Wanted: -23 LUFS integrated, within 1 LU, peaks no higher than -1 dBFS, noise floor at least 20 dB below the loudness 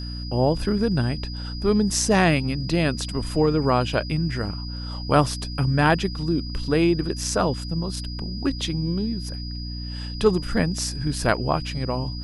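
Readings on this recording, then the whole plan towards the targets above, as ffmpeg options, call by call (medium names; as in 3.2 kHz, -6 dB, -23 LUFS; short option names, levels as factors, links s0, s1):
hum 60 Hz; highest harmonic 300 Hz; hum level -29 dBFS; steady tone 4.9 kHz; tone level -37 dBFS; loudness -24.0 LUFS; peak level -4.0 dBFS; loudness target -23.0 LUFS
-> -af "bandreject=f=60:t=h:w=4,bandreject=f=120:t=h:w=4,bandreject=f=180:t=h:w=4,bandreject=f=240:t=h:w=4,bandreject=f=300:t=h:w=4"
-af "bandreject=f=4900:w=30"
-af "volume=1.12"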